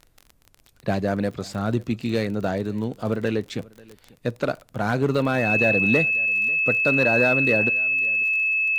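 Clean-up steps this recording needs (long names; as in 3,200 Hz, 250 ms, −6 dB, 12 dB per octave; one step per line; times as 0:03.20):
click removal
notch filter 2,600 Hz, Q 30
downward expander −48 dBFS, range −21 dB
echo removal 542 ms −23.5 dB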